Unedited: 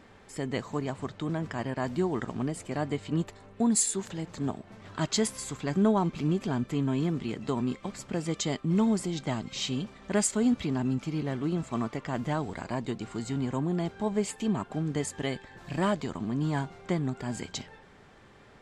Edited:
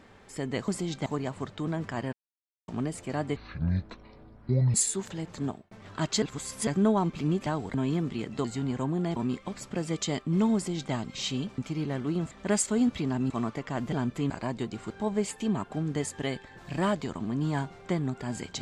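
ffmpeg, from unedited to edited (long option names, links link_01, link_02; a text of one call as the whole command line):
ffmpeg -i in.wav -filter_complex "[0:a]asplit=20[link_01][link_02][link_03][link_04][link_05][link_06][link_07][link_08][link_09][link_10][link_11][link_12][link_13][link_14][link_15][link_16][link_17][link_18][link_19][link_20];[link_01]atrim=end=0.682[link_21];[link_02]atrim=start=8.928:end=9.312[link_22];[link_03]atrim=start=0.678:end=1.75,asetpts=PTS-STARTPTS,afade=type=out:start_time=1.068:duration=0.004:curve=hsin[link_23];[link_04]atrim=start=1.75:end=2.3,asetpts=PTS-STARTPTS,volume=0[link_24];[link_05]atrim=start=2.3:end=2.984,asetpts=PTS-STARTPTS,afade=type=in:duration=0.004:curve=hsin[link_25];[link_06]atrim=start=2.98:end=3.74,asetpts=PTS-STARTPTS,asetrate=24255,aresample=44100,atrim=end_sample=60938,asetpts=PTS-STARTPTS[link_26];[link_07]atrim=start=3.736:end=4.71,asetpts=PTS-STARTPTS,afade=type=out:start_time=0.704:duration=0.27[link_27];[link_08]atrim=start=4.71:end=5.222,asetpts=PTS-STARTPTS,afade=type=in:duration=0.004:curve=hsin[link_28];[link_09]atrim=start=5.218:end=5.672,asetpts=PTS-STARTPTS,areverse[link_29];[link_10]atrim=start=5.668:end=6.462[link_30];[link_11]atrim=start=12.298:end=12.582[link_31];[link_12]atrim=start=6.838:end=7.542[link_32];[link_13]atrim=start=13.178:end=13.902[link_33];[link_14]atrim=start=7.538:end=9.962[link_34];[link_15]atrim=start=10.948:end=11.682[link_35];[link_16]atrim=start=9.958:end=10.952[link_36];[link_17]atrim=start=11.678:end=12.302[link_37];[link_18]atrim=start=6.458:end=6.842[link_38];[link_19]atrim=start=12.578:end=13.182[link_39];[link_20]atrim=start=13.898[link_40];[link_21][link_22]acrossfade=duration=0.004:curve1=hsin:curve2=hsin[link_41];[link_23][link_24][link_25]concat=n=3:v=0:a=1[link_42];[link_41][link_42]acrossfade=duration=0.004:curve1=hsin:curve2=hsin[link_43];[link_43][link_26]acrossfade=duration=0.004:curve1=hsin:curve2=hsin[link_44];[link_27][link_28]concat=n=2:v=0:a=1[link_45];[link_44][link_45]acrossfade=duration=0.004:curve1=hsin:curve2=hsin[link_46];[link_46][link_29]acrossfade=duration=0.004:curve1=hsin:curve2=hsin[link_47];[link_47][link_30]acrossfade=duration=0.004:curve1=hsin:curve2=hsin[link_48];[link_48][link_31]acrossfade=duration=0.004:curve1=hsin:curve2=hsin[link_49];[link_49][link_32]acrossfade=duration=0.004:curve1=hsin:curve2=hsin[link_50];[link_50][link_33]acrossfade=duration=0.004:curve1=hsin:curve2=hsin[link_51];[link_51][link_34]acrossfade=duration=0.004:curve1=hsin:curve2=hsin[link_52];[link_52][link_35]acrossfade=duration=0.004:curve1=hsin:curve2=hsin[link_53];[link_53][link_36]acrossfade=duration=0.004:curve1=hsin:curve2=hsin[link_54];[link_54][link_37]acrossfade=duration=0.004:curve1=hsin:curve2=hsin[link_55];[link_55][link_38]acrossfade=duration=0.004:curve1=hsin:curve2=hsin[link_56];[link_56][link_39]acrossfade=duration=0.004:curve1=hsin:curve2=hsin[link_57];[link_57][link_40]acrossfade=duration=0.004:curve1=hsin:curve2=hsin" out.wav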